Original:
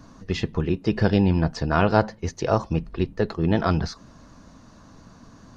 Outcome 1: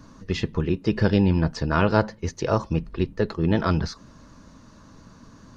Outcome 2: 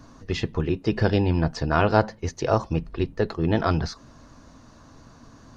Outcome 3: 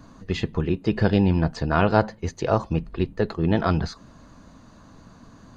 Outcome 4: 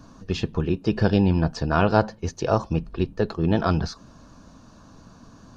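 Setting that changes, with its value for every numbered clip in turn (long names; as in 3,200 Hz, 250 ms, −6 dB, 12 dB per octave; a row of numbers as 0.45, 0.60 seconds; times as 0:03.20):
notch filter, centre frequency: 730, 190, 5,500, 2,000 Hertz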